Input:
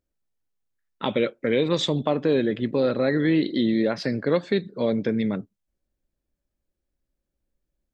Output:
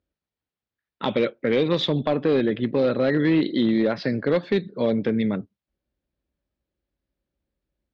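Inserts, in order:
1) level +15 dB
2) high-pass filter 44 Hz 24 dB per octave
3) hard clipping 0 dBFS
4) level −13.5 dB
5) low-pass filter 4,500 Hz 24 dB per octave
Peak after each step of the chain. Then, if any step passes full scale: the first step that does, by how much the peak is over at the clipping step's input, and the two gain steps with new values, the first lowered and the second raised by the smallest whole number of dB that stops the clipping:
+7.0, +6.5, 0.0, −13.5, −12.5 dBFS
step 1, 6.5 dB
step 1 +8 dB, step 4 −6.5 dB

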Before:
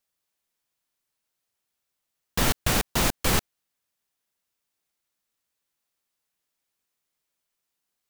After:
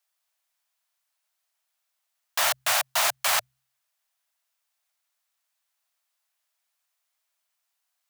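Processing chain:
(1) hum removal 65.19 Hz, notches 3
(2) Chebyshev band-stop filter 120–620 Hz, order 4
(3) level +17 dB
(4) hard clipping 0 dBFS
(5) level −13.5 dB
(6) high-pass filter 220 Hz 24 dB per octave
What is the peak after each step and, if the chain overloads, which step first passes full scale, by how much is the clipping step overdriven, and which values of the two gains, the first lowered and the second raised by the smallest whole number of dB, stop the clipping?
−9.5, −11.0, +6.0, 0.0, −13.5, −11.0 dBFS
step 3, 6.0 dB
step 3 +11 dB, step 5 −7.5 dB

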